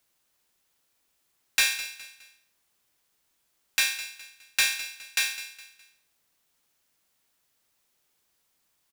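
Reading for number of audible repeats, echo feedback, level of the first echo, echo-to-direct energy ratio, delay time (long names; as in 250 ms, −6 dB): 3, 36%, −14.0 dB, −13.5 dB, 207 ms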